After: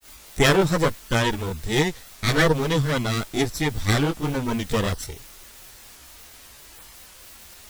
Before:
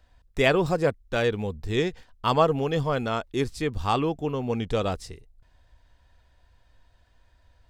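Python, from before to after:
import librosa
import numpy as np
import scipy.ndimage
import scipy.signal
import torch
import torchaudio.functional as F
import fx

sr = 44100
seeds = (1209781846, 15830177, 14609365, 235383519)

y = fx.lower_of_two(x, sr, delay_ms=0.52)
y = fx.high_shelf(y, sr, hz=4500.0, db=11.5)
y = fx.quant_dither(y, sr, seeds[0], bits=8, dither='triangular')
y = fx.granulator(y, sr, seeds[1], grain_ms=153.0, per_s=20.0, spray_ms=18.0, spread_st=0)
y = F.gain(torch.from_numpy(y), 6.5).numpy()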